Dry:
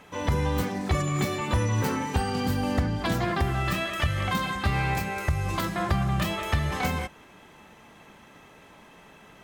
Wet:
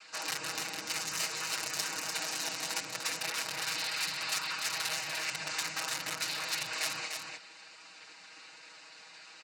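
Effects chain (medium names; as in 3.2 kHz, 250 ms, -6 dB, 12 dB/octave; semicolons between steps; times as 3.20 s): noise-vocoded speech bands 8; peaking EQ 6.1 kHz +4 dB 1.1 oct; compression 2:1, threshold -34 dBFS, peak gain reduction 7.5 dB; integer overflow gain 25 dB; gain riding 0.5 s; band-pass filter 5.1 kHz, Q 0.59; band-stop 3.3 kHz, Q 7.1; comb 6.3 ms, depth 88%; on a send: delay 296 ms -5 dB; on the sum: trim +2 dB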